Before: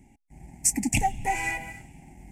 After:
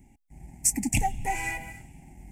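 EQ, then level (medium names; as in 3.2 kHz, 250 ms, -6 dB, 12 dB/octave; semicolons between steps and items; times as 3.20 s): bass shelf 130 Hz +5.5 dB; treble shelf 11 kHz +8 dB; -3.0 dB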